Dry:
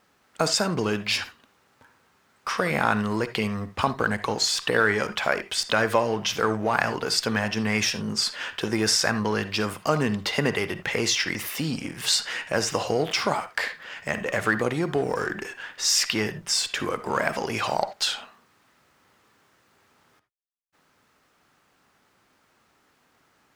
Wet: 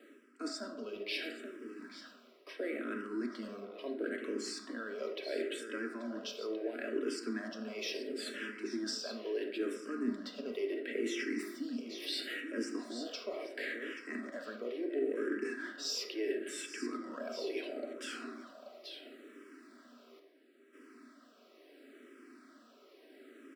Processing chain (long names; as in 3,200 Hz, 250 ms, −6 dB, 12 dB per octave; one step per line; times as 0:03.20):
mu-law and A-law mismatch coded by mu
Butterworth high-pass 230 Hz 72 dB per octave
spectral tilt −3.5 dB per octave
notch filter 6,500 Hz, Q 7.2
comb filter 3.1 ms, depth 37%
reversed playback
downward compressor 4 to 1, threshold −35 dBFS, peak gain reduction 18.5 dB
reversed playback
phaser with its sweep stopped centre 360 Hz, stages 4
single-tap delay 832 ms −11 dB
on a send at −4.5 dB: convolution reverb RT60 1.4 s, pre-delay 6 ms
on the sum: frequency shifter mixed with the dry sound −0.73 Hz
level +1 dB